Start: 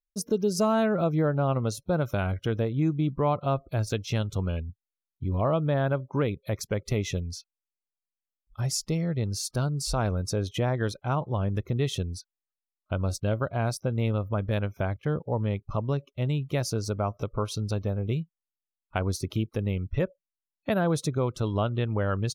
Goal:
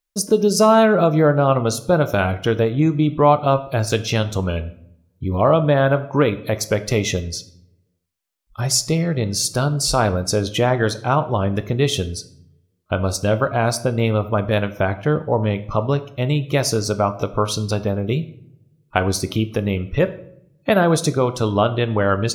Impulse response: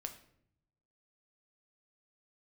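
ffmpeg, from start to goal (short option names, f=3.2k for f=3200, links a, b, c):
-filter_complex "[0:a]asplit=2[a][b];[b]highpass=f=340:p=1[c];[1:a]atrim=start_sample=2205[d];[c][d]afir=irnorm=-1:irlink=0,volume=7dB[e];[a][e]amix=inputs=2:normalize=0,volume=4dB"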